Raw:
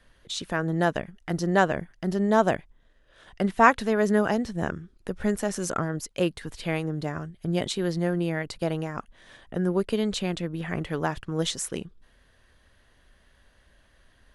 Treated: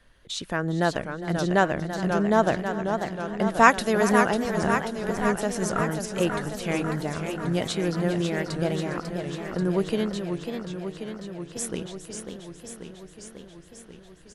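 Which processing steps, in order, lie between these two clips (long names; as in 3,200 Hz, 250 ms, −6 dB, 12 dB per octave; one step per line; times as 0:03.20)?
0:03.54–0:04.24: high-shelf EQ 3,400 Hz +11 dB
repeating echo 407 ms, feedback 27%, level −16 dB
0:10.03–0:11.56: fade out exponential
feedback echo with a swinging delay time 541 ms, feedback 71%, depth 182 cents, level −7 dB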